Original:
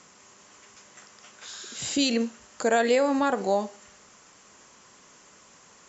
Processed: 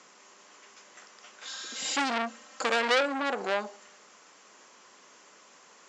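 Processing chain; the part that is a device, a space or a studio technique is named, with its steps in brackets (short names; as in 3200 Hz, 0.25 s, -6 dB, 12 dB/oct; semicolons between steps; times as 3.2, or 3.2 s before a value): 1.45–3.01 comb 3.8 ms, depth 93%; public-address speaker with an overloaded transformer (core saturation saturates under 3400 Hz; BPF 300–6200 Hz)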